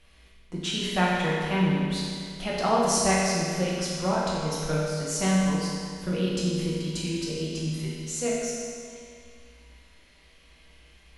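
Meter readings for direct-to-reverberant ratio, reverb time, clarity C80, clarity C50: -6.5 dB, 2.2 s, 0.0 dB, -2.0 dB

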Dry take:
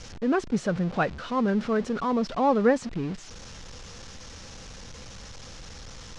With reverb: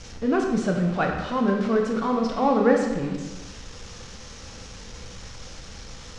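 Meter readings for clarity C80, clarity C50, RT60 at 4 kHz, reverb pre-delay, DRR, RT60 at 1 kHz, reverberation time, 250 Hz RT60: 6.0 dB, 4.0 dB, 1.0 s, 14 ms, 1.5 dB, 1.2 s, 1.2 s, 1.2 s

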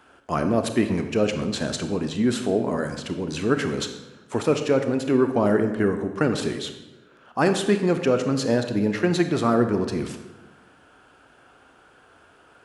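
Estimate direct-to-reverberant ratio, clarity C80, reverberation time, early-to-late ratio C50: 7.0 dB, 10.5 dB, 1.2 s, 8.5 dB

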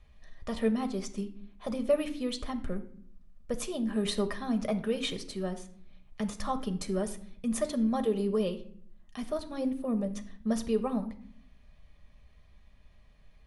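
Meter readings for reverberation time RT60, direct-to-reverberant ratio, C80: 0.60 s, 6.5 dB, 16.5 dB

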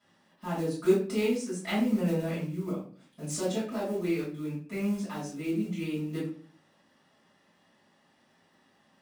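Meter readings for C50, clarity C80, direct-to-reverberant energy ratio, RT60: 5.0 dB, 10.5 dB, -10.5 dB, 0.45 s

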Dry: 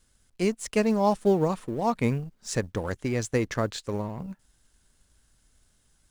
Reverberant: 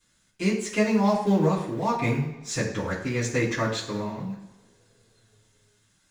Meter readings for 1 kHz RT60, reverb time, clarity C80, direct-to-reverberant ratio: 1.1 s, 1.3 s, 9.0 dB, -11.5 dB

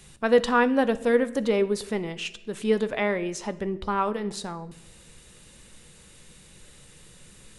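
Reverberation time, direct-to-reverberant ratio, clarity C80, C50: 0.85 s, 11.5 dB, 19.5 dB, 16.5 dB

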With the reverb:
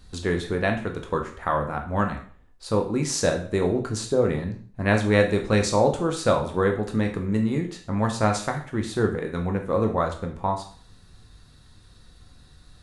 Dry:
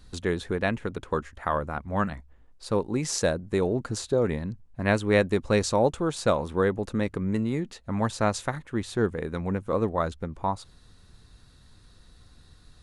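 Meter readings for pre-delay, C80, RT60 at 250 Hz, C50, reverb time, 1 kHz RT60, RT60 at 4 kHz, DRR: 7 ms, 14.0 dB, 0.45 s, 9.0 dB, 0.50 s, 0.45 s, 0.45 s, 3.0 dB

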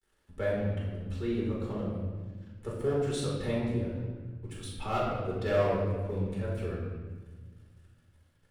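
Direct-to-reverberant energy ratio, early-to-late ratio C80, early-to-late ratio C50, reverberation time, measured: -6.0 dB, 3.0 dB, 0.5 dB, 1.4 s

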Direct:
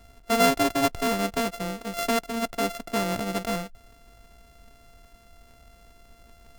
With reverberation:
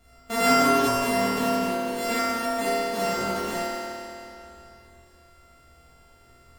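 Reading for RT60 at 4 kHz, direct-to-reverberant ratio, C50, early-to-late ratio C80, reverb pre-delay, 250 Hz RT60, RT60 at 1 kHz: 2.8 s, -10.0 dB, -5.0 dB, -3.0 dB, 12 ms, 2.9 s, 2.9 s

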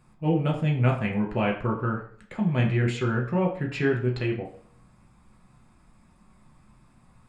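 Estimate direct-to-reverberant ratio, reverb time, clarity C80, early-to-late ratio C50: -1.0 dB, 0.55 s, 12.5 dB, 9.0 dB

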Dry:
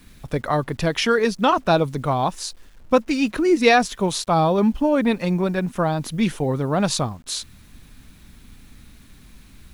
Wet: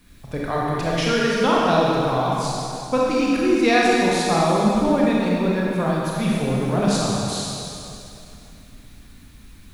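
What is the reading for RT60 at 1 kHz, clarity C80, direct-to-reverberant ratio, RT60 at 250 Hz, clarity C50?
2.7 s, -1.5 dB, -5.0 dB, 2.7 s, -3.0 dB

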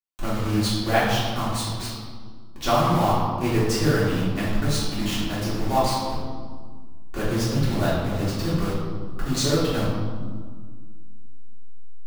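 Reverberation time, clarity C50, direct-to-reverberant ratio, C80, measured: 1.7 s, -0.5 dB, -10.0 dB, 2.0 dB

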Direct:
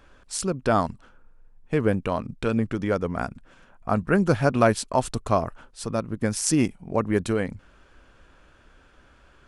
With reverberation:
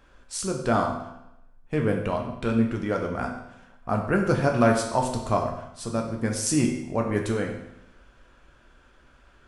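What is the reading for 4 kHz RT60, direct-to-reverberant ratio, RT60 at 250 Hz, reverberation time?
0.80 s, 1.0 dB, 0.85 s, 0.85 s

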